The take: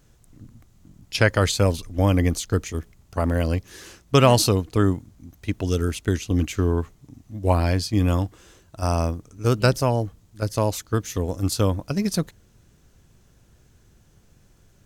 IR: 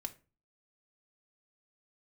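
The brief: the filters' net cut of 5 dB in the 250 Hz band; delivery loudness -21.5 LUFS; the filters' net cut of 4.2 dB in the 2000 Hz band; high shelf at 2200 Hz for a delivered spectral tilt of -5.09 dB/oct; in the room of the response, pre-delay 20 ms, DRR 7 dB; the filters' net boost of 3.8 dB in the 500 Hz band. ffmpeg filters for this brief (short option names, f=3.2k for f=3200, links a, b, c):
-filter_complex "[0:a]equalizer=f=250:t=o:g=-9,equalizer=f=500:t=o:g=7,equalizer=f=2k:t=o:g=-8.5,highshelf=f=2.2k:g=4,asplit=2[a][b];[1:a]atrim=start_sample=2205,adelay=20[c];[b][c]afir=irnorm=-1:irlink=0,volume=-5dB[d];[a][d]amix=inputs=2:normalize=0"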